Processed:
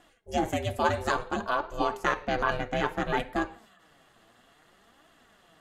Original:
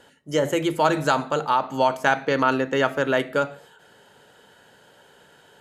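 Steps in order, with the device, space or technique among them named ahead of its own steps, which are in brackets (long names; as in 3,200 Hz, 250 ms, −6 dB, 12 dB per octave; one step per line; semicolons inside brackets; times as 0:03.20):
alien voice (ring modulation 240 Hz; flanger 0.59 Hz, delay 2.8 ms, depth 6.5 ms, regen +47%)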